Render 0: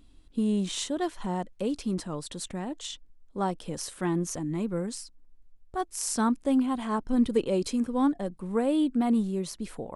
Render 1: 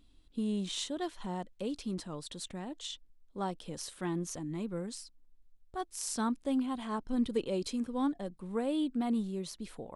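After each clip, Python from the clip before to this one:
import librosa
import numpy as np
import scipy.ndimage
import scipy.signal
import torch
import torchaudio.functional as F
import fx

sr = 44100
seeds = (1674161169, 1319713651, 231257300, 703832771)

y = fx.peak_eq(x, sr, hz=3700.0, db=5.0, octaves=0.86)
y = y * 10.0 ** (-7.0 / 20.0)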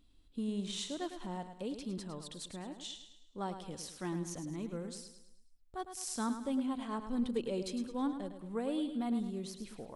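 y = fx.echo_feedback(x, sr, ms=106, feedback_pct=44, wet_db=-9.5)
y = y * 10.0 ** (-3.5 / 20.0)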